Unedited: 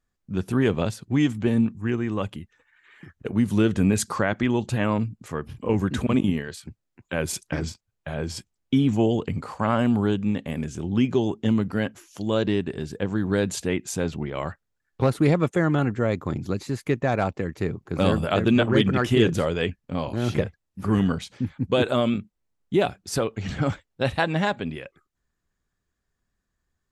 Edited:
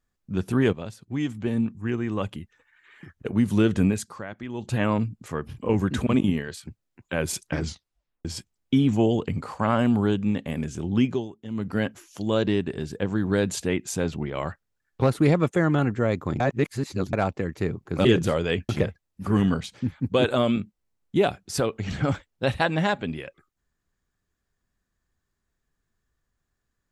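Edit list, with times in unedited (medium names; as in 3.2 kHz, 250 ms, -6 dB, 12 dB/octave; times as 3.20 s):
0.73–2.35 s: fade in linear, from -12 dB
3.85–4.75 s: dip -13 dB, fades 0.30 s quadratic
7.65 s: tape stop 0.60 s
11.03–11.75 s: dip -15 dB, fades 0.26 s
16.40–17.13 s: reverse
18.05–19.16 s: delete
19.80–20.27 s: delete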